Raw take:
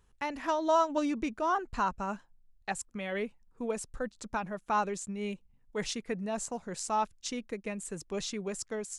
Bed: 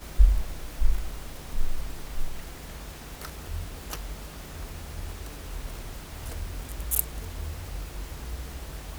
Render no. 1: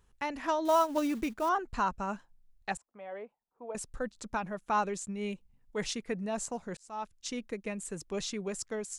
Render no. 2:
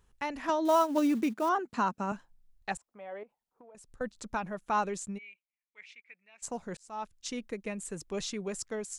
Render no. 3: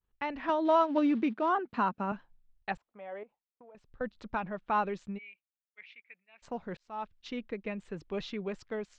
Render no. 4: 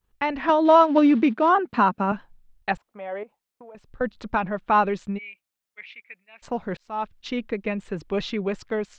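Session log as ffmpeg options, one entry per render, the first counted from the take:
-filter_complex "[0:a]asettb=1/sr,asplit=3[s0][s1][s2];[s0]atrim=end=0.654[s3];[s1]atrim=start=0.65:end=1.49,asetpts=PTS-STARTPTS,afade=t=in:d=0.004:c=qsin,afade=t=out:st=0.836:d=0.004:c=qsin,acrusher=bits=5:mode=log:mix=0:aa=0.000001[s4];[s2]atrim=start=1.486[s5];[s3][s4]acrossfade=d=0.004:c1=hsin:c2=qsin[s6];[s6][s5]acrossfade=d=0.004:c1=qsin:c2=hsin,asettb=1/sr,asplit=3[s7][s8][s9];[s7]atrim=end=2.774[s10];[s8]atrim=start=2.77:end=3.75,asetpts=PTS-STARTPTS,afade=t=in:d=0.004:c=qsin,afade=t=out:st=0.976:d=0.004:c=qsin,bandpass=f=750:t=q:w=2.2[s11];[s9]atrim=start=3.746[s12];[s10][s11]acrossfade=d=0.004:c1=hsin:c2=qsin[s13];[s13][s12]acrossfade=d=0.004:c1=qsin:c2=hsin,asplit=2[s14][s15];[s14]atrim=end=6.77,asetpts=PTS-STARTPTS,afade=t=out:st=6.766:d=0.004:c=hsin[s16];[s15]atrim=start=6.77,asetpts=PTS-STARTPTS,afade=t=in:d=0.61[s17];[s16][s17]concat=n=2:v=0:a=1"
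-filter_complex "[0:a]asettb=1/sr,asplit=3[s0][s1][s2];[s0]atrim=end=0.494[s3];[s1]atrim=start=0.49:end=2.12,asetpts=PTS-STARTPTS,afade=t=in:d=0.004:c=qsin,afade=t=out:st=1.626:d=0.004:c=qsin,highpass=f=220:t=q:w=1.9[s4];[s2]atrim=start=2.116[s5];[s3][s4]acrossfade=d=0.004:c1=hsin:c2=qsin[s6];[s6][s5]acrossfade=d=0.004:c1=qsin:c2=hsin,asettb=1/sr,asplit=3[s7][s8][s9];[s7]atrim=end=3.234[s10];[s8]atrim=start=3.23:end=4.01,asetpts=PTS-STARTPTS,afade=t=in:d=0.004:c=qsin,afade=t=out:st=0.776:d=0.004:c=qsin,acompressor=threshold=0.00316:ratio=16:attack=3.2:release=140:knee=1:detection=peak[s11];[s9]atrim=start=4.006[s12];[s10][s11]acrossfade=d=0.004:c1=hsin:c2=qsin[s13];[s13][s12]acrossfade=d=0.004:c1=qsin:c2=hsin,asplit=3[s14][s15][s16];[s14]afade=t=out:st=5.17:d=0.02[s17];[s15]bandpass=f=2300:t=q:w=9.1,afade=t=in:st=5.17:d=0.02,afade=t=out:st=6.42:d=0.02[s18];[s16]afade=t=in:st=6.42:d=0.02[s19];[s17][s18][s19]amix=inputs=3:normalize=0"
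-af "agate=range=0.0224:threshold=0.00158:ratio=3:detection=peak,lowpass=f=3700:w=0.5412,lowpass=f=3700:w=1.3066"
-af "volume=3.16"

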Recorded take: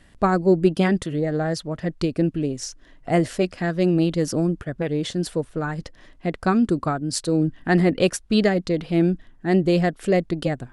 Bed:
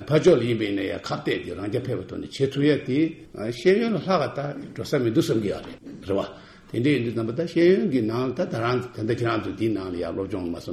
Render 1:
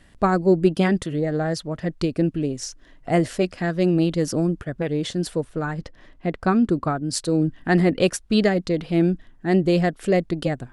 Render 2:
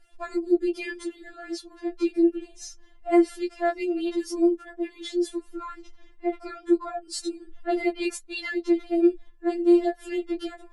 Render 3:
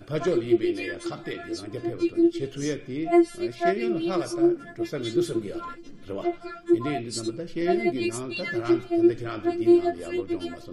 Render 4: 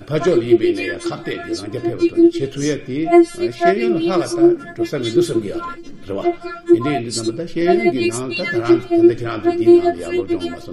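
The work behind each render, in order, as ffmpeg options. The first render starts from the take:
-filter_complex "[0:a]asettb=1/sr,asplit=3[s0][s1][s2];[s0]atrim=end=5.734[s3];[s1]atrim=start=5.73:end=7.03,asetpts=PTS-STARTPTS,afade=t=in:d=0.004:c=qsin,afade=t=out:st=1.296:d=0.004:c=qsin,aemphasis=mode=reproduction:type=cd[s4];[s2]atrim=start=7.026[s5];[s3][s4]acrossfade=d=0.004:c1=hsin:c2=qsin[s6];[s6][s5]acrossfade=d=0.004:c1=qsin:c2=hsin"
-af "flanger=delay=7.2:depth=8.2:regen=-39:speed=0.26:shape=sinusoidal,afftfilt=real='re*4*eq(mod(b,16),0)':imag='im*4*eq(mod(b,16),0)':win_size=2048:overlap=0.75"
-filter_complex "[1:a]volume=0.355[s0];[0:a][s0]amix=inputs=2:normalize=0"
-af "volume=2.82,alimiter=limit=0.794:level=0:latency=1"

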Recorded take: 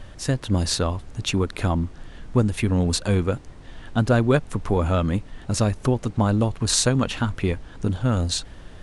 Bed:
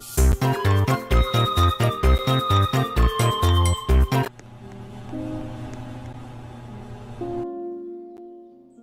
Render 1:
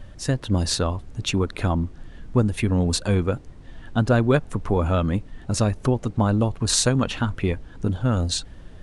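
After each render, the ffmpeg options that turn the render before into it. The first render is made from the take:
-af "afftdn=nr=6:nf=-43"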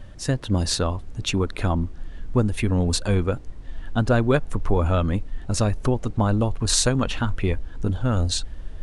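-af "asubboost=boost=3:cutoff=68"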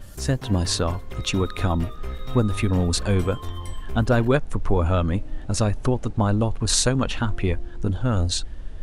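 -filter_complex "[1:a]volume=0.158[s0];[0:a][s0]amix=inputs=2:normalize=0"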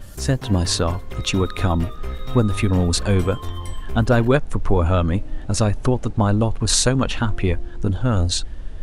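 -af "volume=1.41,alimiter=limit=0.891:level=0:latency=1"

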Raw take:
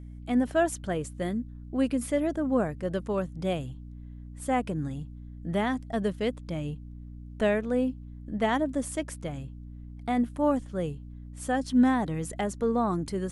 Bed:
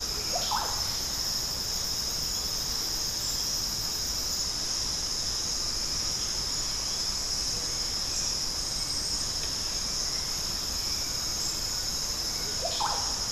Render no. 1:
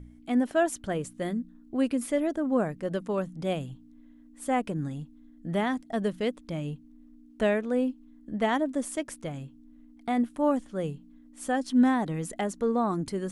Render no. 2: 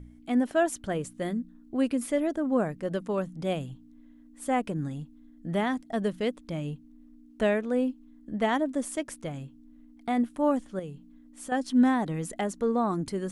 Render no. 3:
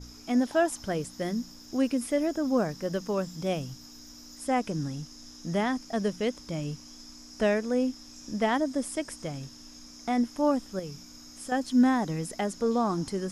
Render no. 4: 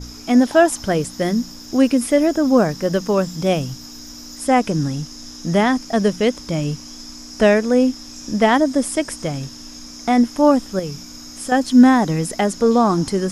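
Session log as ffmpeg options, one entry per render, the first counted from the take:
-af "bandreject=f=60:t=h:w=4,bandreject=f=120:t=h:w=4,bandreject=f=180:t=h:w=4"
-filter_complex "[0:a]asettb=1/sr,asplit=3[s0][s1][s2];[s0]atrim=end=10.794[s3];[s1]atrim=start=10.79:end=11.52,asetpts=PTS-STARTPTS,afade=t=in:d=0.004:c=qsin,afade=t=out:st=0.726:d=0.004:c=qsin,acompressor=threshold=0.01:ratio=2:attack=3.2:release=140:knee=1:detection=peak[s4];[s2]atrim=start=11.516[s5];[s3][s4]acrossfade=d=0.004:c1=hsin:c2=qsin[s6];[s6][s5]acrossfade=d=0.004:c1=qsin:c2=hsin"
-filter_complex "[1:a]volume=0.112[s0];[0:a][s0]amix=inputs=2:normalize=0"
-af "volume=3.76"

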